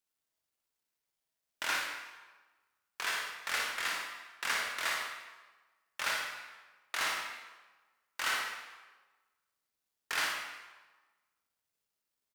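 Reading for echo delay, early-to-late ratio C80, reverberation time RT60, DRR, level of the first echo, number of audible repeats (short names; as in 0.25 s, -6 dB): 57 ms, 4.5 dB, 1.3 s, -1.0 dB, -5.5 dB, 1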